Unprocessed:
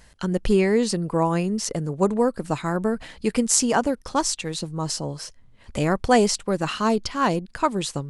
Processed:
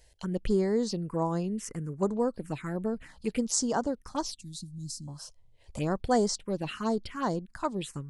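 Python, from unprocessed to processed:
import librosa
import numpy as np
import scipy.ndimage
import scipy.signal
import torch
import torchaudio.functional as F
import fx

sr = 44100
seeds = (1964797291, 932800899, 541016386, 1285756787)

y = fx.cheby1_bandstop(x, sr, low_hz=280.0, high_hz=3600.0, order=3, at=(4.31, 5.08))
y = fx.env_phaser(y, sr, low_hz=200.0, high_hz=2600.0, full_db=-17.0)
y = y * librosa.db_to_amplitude(-7.0)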